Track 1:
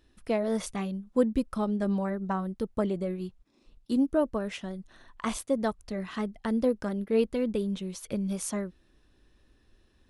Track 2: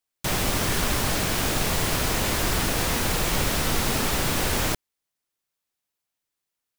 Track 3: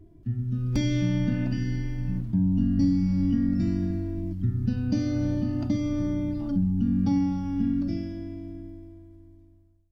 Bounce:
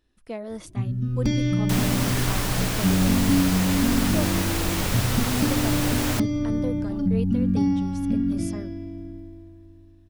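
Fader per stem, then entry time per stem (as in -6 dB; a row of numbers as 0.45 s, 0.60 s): -6.0 dB, -2.5 dB, +2.0 dB; 0.00 s, 1.45 s, 0.50 s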